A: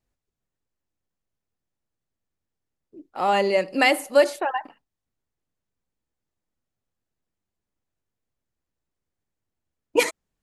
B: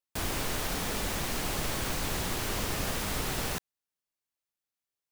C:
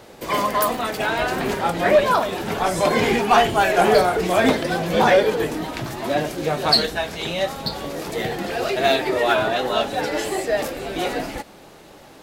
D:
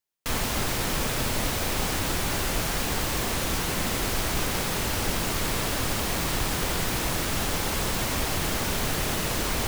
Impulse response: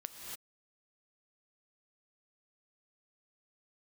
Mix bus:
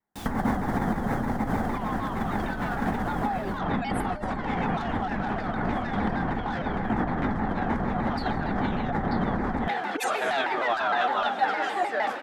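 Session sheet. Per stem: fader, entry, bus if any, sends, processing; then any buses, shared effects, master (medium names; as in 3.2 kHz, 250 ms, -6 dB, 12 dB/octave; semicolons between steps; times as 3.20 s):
-4.5 dB, 0.00 s, send -9 dB, expander on every frequency bin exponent 3; bass shelf 180 Hz -11.5 dB
-13.5 dB, 0.00 s, no send, none
-2.5 dB, 1.45 s, send -12.5 dB, band-pass filter 1.4 kHz, Q 2.1; saturation -20.5 dBFS, distortion -13 dB
+2.0 dB, 0.00 s, no send, steep low-pass 2 kHz 72 dB/octave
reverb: on, pre-delay 3 ms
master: compressor with a negative ratio -31 dBFS, ratio -1; small resonant body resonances 220/780/3400 Hz, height 12 dB, ringing for 35 ms; vibrato with a chosen wave saw down 6.5 Hz, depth 160 cents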